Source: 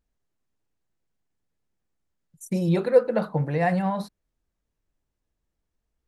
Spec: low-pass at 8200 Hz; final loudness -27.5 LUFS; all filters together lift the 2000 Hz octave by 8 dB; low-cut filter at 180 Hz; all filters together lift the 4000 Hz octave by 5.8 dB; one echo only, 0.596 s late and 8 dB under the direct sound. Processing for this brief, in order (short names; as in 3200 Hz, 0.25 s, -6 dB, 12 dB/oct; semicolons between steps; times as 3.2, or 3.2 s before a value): HPF 180 Hz; LPF 8200 Hz; bell 2000 Hz +8.5 dB; bell 4000 Hz +4.5 dB; echo 0.596 s -8 dB; gain -3.5 dB